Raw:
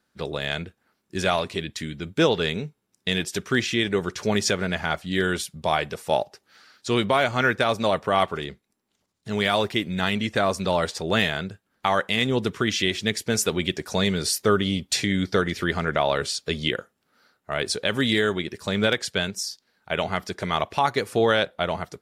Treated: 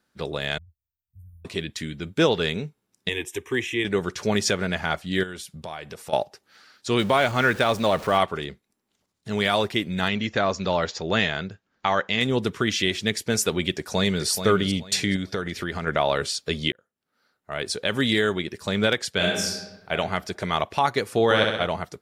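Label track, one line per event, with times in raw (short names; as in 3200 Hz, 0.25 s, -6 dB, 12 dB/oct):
0.580000	1.450000	inverse Chebyshev band-stop 320–6000 Hz, stop band 70 dB
3.090000	3.850000	fixed phaser centre 930 Hz, stages 8
5.230000	6.130000	compressor 3:1, threshold -35 dBFS
6.990000	8.180000	zero-crossing step of -34 dBFS
10.080000	12.210000	Chebyshev low-pass 7000 Hz, order 6
13.760000	14.280000	echo throw 0.43 s, feedback 25%, level -8.5 dB
15.160000	15.870000	compressor 2.5:1, threshold -26 dBFS
16.720000	17.990000	fade in
19.150000	19.910000	reverb throw, RT60 1.1 s, DRR -2 dB
21.240000	21.670000	flutter echo walls apart 11.1 m, dies away in 0.92 s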